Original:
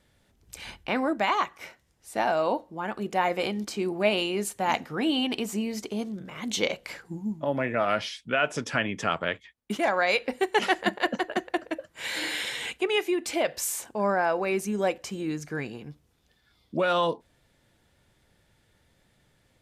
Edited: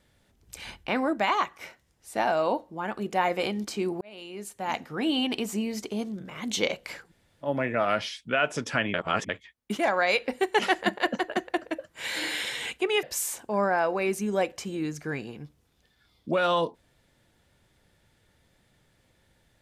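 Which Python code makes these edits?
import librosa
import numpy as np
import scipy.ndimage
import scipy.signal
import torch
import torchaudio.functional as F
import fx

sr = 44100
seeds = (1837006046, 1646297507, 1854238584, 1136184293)

y = fx.edit(x, sr, fx.fade_in_span(start_s=4.01, length_s=1.18),
    fx.room_tone_fill(start_s=7.07, length_s=0.38, crossfade_s=0.1),
    fx.reverse_span(start_s=8.94, length_s=0.35),
    fx.cut(start_s=13.03, length_s=0.46), tone=tone)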